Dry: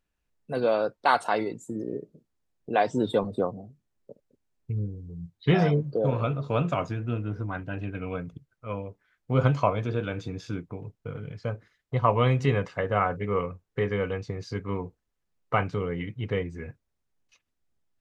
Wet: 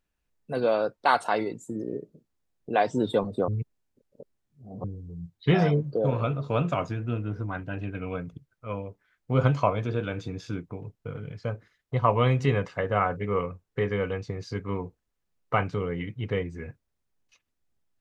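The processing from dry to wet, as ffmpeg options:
-filter_complex "[0:a]asplit=3[a][b][c];[a]atrim=end=3.482[d];[b]atrim=start=3.478:end=4.842,asetpts=PTS-STARTPTS,areverse[e];[c]atrim=start=4.838[f];[d][e]acrossfade=d=0.004:c1=hsin:c2=hsin[g];[g][f]acrossfade=d=0.004:c1=hsin:c2=hsin"

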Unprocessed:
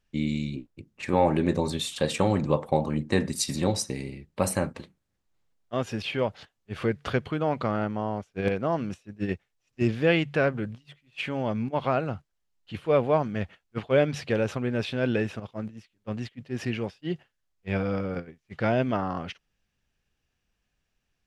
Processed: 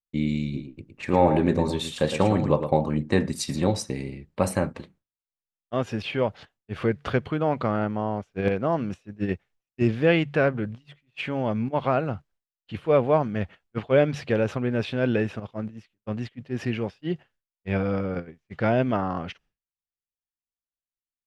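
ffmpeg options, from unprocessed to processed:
-filter_complex "[0:a]asplit=3[a][b][c];[a]afade=t=out:st=0.53:d=0.02[d];[b]aecho=1:1:111:0.376,afade=t=in:st=0.53:d=0.02,afade=t=out:st=2.73:d=0.02[e];[c]afade=t=in:st=2.73:d=0.02[f];[d][e][f]amix=inputs=3:normalize=0,agate=range=-33dB:threshold=-54dB:ratio=3:detection=peak,highshelf=f=4k:g=-8,volume=2.5dB"

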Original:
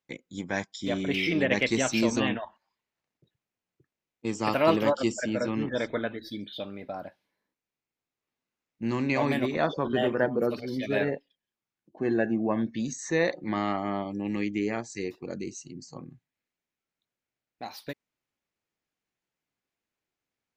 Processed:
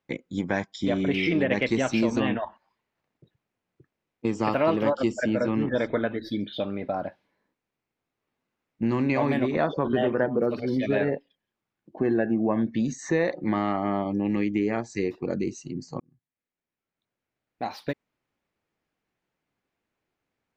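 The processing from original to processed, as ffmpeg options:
-filter_complex "[0:a]asplit=2[a][b];[a]atrim=end=16,asetpts=PTS-STARTPTS,afade=t=out:st=15.996:d=0.004:c=hsin[c];[b]atrim=start=16,asetpts=PTS-STARTPTS,afade=t=in:d=1.63[d];[c][d]concat=n=2:v=0:a=1,lowpass=f=1.8k:p=1,acompressor=threshold=-32dB:ratio=2.5,volume=9dB"

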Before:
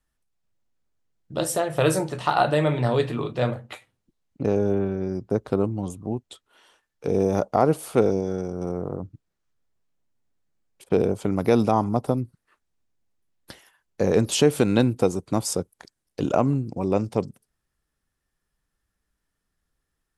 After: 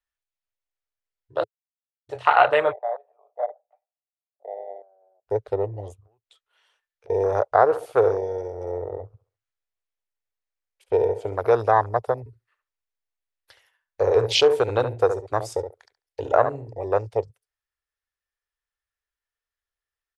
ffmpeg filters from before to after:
-filter_complex "[0:a]asplit=3[a][b][c];[a]afade=t=out:st=2.71:d=0.02[d];[b]asuperpass=centerf=680:order=4:qfactor=3.7,afade=t=in:st=2.71:d=0.02,afade=t=out:st=5.26:d=0.02[e];[c]afade=t=in:st=5.26:d=0.02[f];[d][e][f]amix=inputs=3:normalize=0,asettb=1/sr,asplit=3[g][h][i];[g]atrim=end=5.934[j];[h]atrim=start=5.93:end=7.1,asetpts=PTS-STARTPTS,afade=t=in:d=0.004:c=qsin,afade=t=out:st=1.166:d=0.004:c=qsin,acompressor=threshold=-43dB:ratio=5:attack=3.2:release=140:knee=1:detection=peak[k];[i]atrim=start=7.096[l];[j][k]acrossfade=d=0.004:c1=hsin:c2=qsin[m];[m][l]acrossfade=d=0.004:c1=qsin:c2=hsin,asplit=3[n][o][p];[n]afade=t=out:st=7.7:d=0.02[q];[o]aecho=1:1:68|136|204|272|340:0.224|0.103|0.0474|0.0218|0.01,afade=t=in:st=7.7:d=0.02,afade=t=out:st=11.48:d=0.02[r];[p]afade=t=in:st=11.48:d=0.02[s];[q][r][s]amix=inputs=3:normalize=0,asettb=1/sr,asplit=3[t][u][v];[t]atrim=end=12.194[w];[u]atrim=start=12.19:end=16.85,asetpts=PTS-STARTPTS,afade=t=in:d=0.004:c=qsin,afade=t=out:st=4.656:d=0.004:c=qsin,asplit=2[x][y];[y]adelay=70,lowpass=f=2k:p=1,volume=-8dB,asplit=2[z][aa];[aa]adelay=70,lowpass=f=2k:p=1,volume=0.22,asplit=2[ab][ac];[ac]adelay=70,lowpass=f=2k:p=1,volume=0.22[ad];[x][z][ab][ad]amix=inputs=4:normalize=0,atrim=end_sample=205506[ae];[v]atrim=start=16.846[af];[w][ae]acrossfade=d=0.004:c1=hsin:c2=qsin[ag];[ag][af]acrossfade=d=0.004:c1=qsin:c2=hsin,asplit=3[ah][ai][aj];[ah]atrim=end=1.44,asetpts=PTS-STARTPTS,afade=t=out:st=1.436:d=0.004:c=hsin[ak];[ai]atrim=start=1.44:end=2.09,asetpts=PTS-STARTPTS,volume=0[al];[aj]atrim=start=2.09,asetpts=PTS-STARTPTS,afade=t=in:d=0.004:c=hsin[am];[ak][al][am]concat=n=3:v=0:a=1,afwtdn=0.0398,firequalizer=gain_entry='entry(110,0);entry(170,-28);entry(430,5);entry(2000,13);entry(8500,5)':delay=0.05:min_phase=1,volume=-2.5dB"

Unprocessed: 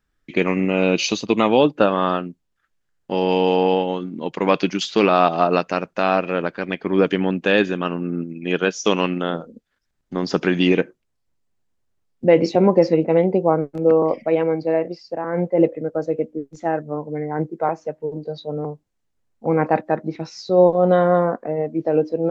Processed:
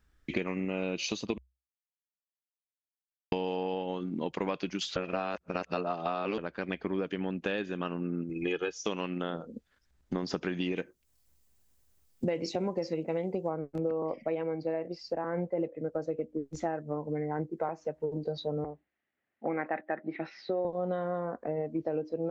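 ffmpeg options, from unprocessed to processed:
-filter_complex "[0:a]asettb=1/sr,asplit=3[a][b][c];[a]atrim=end=8.294[d];[b]atrim=start=8.29:end=8.78,asetpts=PTS-STARTPTS,afade=t=in:d=0.004:c=qsin,afade=t=out:st=0.486:d=0.004:c=qsin,aecho=1:1:2.4:0.85,atrim=end_sample=21609[e];[c]atrim=start=8.776[f];[d][e]acrossfade=d=0.004:c1=hsin:c2=qsin[g];[g][f]acrossfade=d=0.004:c1=qsin:c2=hsin,asettb=1/sr,asplit=3[h][i][j];[h]atrim=end=10.764[k];[i]atrim=start=10.76:end=13.49,asetpts=PTS-STARTPTS,afade=t=in:d=0.004:c=qsin,afade=t=out:st=2.726:d=0.004:c=qsin,aemphasis=mode=production:type=75kf[l];[j]atrim=start=13.486[m];[k][l]acrossfade=d=0.004:c1=hsin:c2=qsin[n];[n][m]acrossfade=d=0.004:c1=qsin:c2=hsin,asettb=1/sr,asplit=3[o][p][q];[o]atrim=end=18.644[r];[p]atrim=start=18.64:end=20.65,asetpts=PTS-STARTPTS,afade=t=in:d=0.004:c=qsin,afade=t=out:st=2.006:d=0.004:c=qsin,highpass=320,equalizer=f=470:t=q:w=4:g=-7,equalizer=f=990:t=q:w=4:g=-8,equalizer=f=1.9k:t=q:w=4:g=9,lowpass=f=3k:w=0.5412,lowpass=f=3k:w=1.3066[s];[q]atrim=start=20.646[t];[r][s]acrossfade=d=0.004:c1=hsin:c2=qsin[u];[u][t]acrossfade=d=0.004:c1=qsin:c2=hsin,asplit=5[v][w][x][y][z];[v]atrim=end=1.38,asetpts=PTS-STARTPTS,afade=t=out:st=1.376:d=0.004:c=hsin[aa];[w]atrim=start=1.38:end=3.32,asetpts=PTS-STARTPTS,volume=0[ab];[x]atrim=start=3.32:end=4.962,asetpts=PTS-STARTPTS,afade=t=in:d=0.004:c=hsin[ac];[y]atrim=start=4.958:end=6.382,asetpts=PTS-STARTPTS,areverse[ad];[z]atrim=start=6.378[ae];[aa][ab][ac]concat=n=3:v=0:a=1[af];[af][ad]acrossfade=d=0.004:c1=hsin:c2=hsin[ag];[ag][ae]acrossfade=d=0.004:c1=hsin:c2=hsin,equalizer=f=64:t=o:w=0.48:g=14.5,acompressor=threshold=-31dB:ratio=8,volume=1.5dB"

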